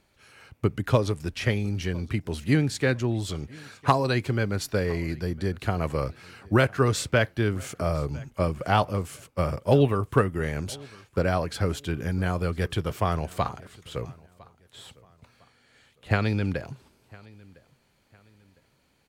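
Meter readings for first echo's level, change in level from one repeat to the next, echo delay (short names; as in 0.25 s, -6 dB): -24.0 dB, -9.5 dB, 1.006 s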